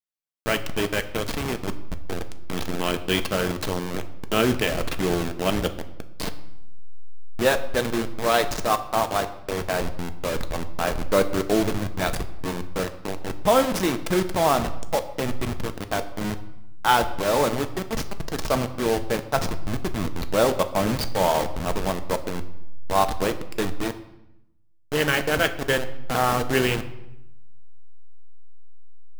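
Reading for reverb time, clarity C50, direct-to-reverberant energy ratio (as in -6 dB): 0.85 s, 14.0 dB, 8.0 dB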